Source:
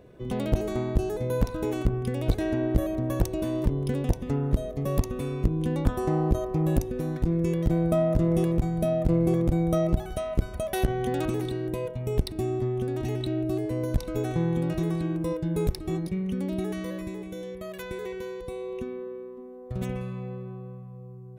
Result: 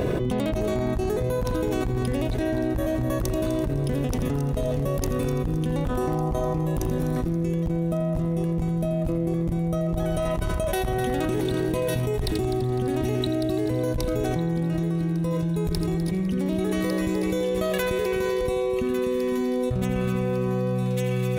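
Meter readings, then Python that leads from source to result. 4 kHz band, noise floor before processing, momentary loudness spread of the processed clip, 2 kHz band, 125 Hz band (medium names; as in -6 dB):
+6.5 dB, -42 dBFS, 1 LU, +6.5 dB, +2.0 dB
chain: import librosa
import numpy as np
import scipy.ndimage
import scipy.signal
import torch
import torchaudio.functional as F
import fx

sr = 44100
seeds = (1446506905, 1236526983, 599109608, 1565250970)

y = fx.echo_wet_highpass(x, sr, ms=1152, feedback_pct=45, hz=2000.0, wet_db=-9.5)
y = 10.0 ** (-11.5 / 20.0) * (np.abs((y / 10.0 ** (-11.5 / 20.0) + 3.0) % 4.0 - 2.0) - 1.0)
y = fx.echo_heads(y, sr, ms=84, heads='first and third', feedback_pct=49, wet_db=-11.5)
y = fx.env_flatten(y, sr, amount_pct=100)
y = y * librosa.db_to_amplitude(-6.5)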